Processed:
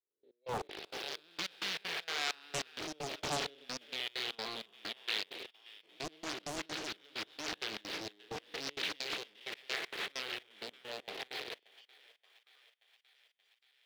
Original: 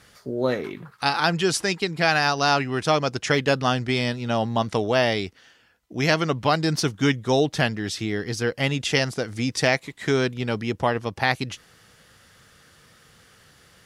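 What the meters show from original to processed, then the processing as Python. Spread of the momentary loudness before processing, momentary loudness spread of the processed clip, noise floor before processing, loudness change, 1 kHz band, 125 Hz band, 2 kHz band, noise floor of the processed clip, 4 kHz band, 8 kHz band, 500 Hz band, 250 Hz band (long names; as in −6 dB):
7 LU, 9 LU, −56 dBFS, −16.5 dB, −19.5 dB, −28.5 dB, −15.5 dB, −77 dBFS, −10.0 dB, −12.5 dB, −22.0 dB, −24.0 dB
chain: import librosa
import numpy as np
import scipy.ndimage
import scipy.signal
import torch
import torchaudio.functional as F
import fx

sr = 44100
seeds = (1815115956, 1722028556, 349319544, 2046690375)

p1 = fx.spec_blur(x, sr, span_ms=443.0)
p2 = fx.ladder_lowpass(p1, sr, hz=3900.0, resonance_pct=60)
p3 = fx.phaser_stages(p2, sr, stages=2, low_hz=490.0, high_hz=1100.0, hz=0.38, feedback_pct=10)
p4 = fx.rotary_switch(p3, sr, hz=1.1, then_hz=6.7, switch_at_s=4.94)
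p5 = fx.noise_reduce_blind(p4, sr, reduce_db=24)
p6 = fx.schmitt(p5, sr, flips_db=-46.5)
p7 = p5 + F.gain(torch.from_numpy(p6), -5.5).numpy()
p8 = fx.ladder_highpass(p7, sr, hz=360.0, resonance_pct=55)
p9 = fx.step_gate(p8, sr, bpm=195, pattern='...x..xx.xx.xxx', floor_db=-24.0, edge_ms=4.5)
p10 = p9 + fx.echo_thinned(p9, sr, ms=578, feedback_pct=72, hz=640.0, wet_db=-21.5, dry=0)
p11 = fx.doppler_dist(p10, sr, depth_ms=0.96)
y = F.gain(torch.from_numpy(p11), 14.5).numpy()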